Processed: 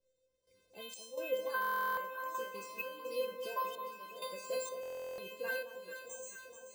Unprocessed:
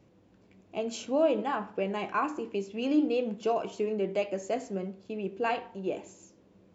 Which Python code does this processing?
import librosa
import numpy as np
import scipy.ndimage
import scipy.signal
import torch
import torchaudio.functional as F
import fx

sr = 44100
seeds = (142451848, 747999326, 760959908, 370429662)

p1 = fx.spec_quant(x, sr, step_db=30)
p2 = fx.high_shelf(p1, sr, hz=3000.0, db=11.5)
p3 = fx.rider(p2, sr, range_db=10, speed_s=0.5)
p4 = p2 + F.gain(torch.from_numpy(p3), 3.0).numpy()
p5 = fx.comb_fb(p4, sr, f0_hz=520.0, decay_s=0.52, harmonics='all', damping=0.0, mix_pct=100)
p6 = fx.step_gate(p5, sr, bpm=64, pattern='..xx.xxx', floor_db=-12.0, edge_ms=4.5)
p7 = fx.echo_alternate(p6, sr, ms=217, hz=1200.0, feedback_pct=83, wet_db=-8.5)
p8 = np.repeat(p7[::3], 3)[:len(p7)]
p9 = fx.buffer_glitch(p8, sr, at_s=(1.6, 4.81), block=1024, repeats=15)
y = F.gain(torch.from_numpy(p9), 6.0).numpy()